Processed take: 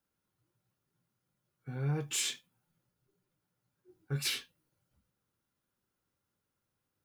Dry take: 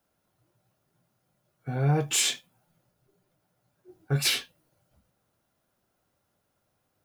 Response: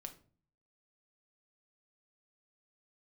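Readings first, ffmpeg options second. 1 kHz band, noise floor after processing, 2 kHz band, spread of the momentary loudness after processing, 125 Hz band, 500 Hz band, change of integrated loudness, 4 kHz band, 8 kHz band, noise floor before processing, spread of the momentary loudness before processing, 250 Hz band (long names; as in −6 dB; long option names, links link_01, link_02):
−14.0 dB, below −85 dBFS, −8.5 dB, 13 LU, −8.5 dB, −11.0 dB, −8.5 dB, −8.5 dB, −8.5 dB, −77 dBFS, 13 LU, −8.5 dB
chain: -af "equalizer=frequency=670:width_type=o:width=0.44:gain=-12,volume=-8.5dB"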